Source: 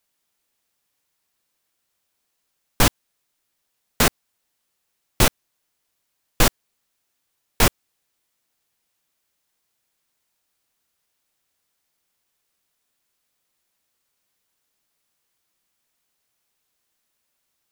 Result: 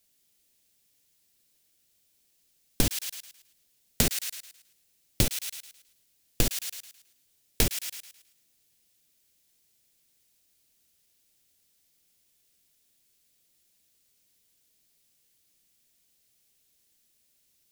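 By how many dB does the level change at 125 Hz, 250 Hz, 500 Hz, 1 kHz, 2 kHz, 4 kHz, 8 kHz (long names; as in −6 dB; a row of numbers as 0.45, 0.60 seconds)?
−6.5, −7.0, −10.0, −18.0, −12.0, −6.5, −4.5 decibels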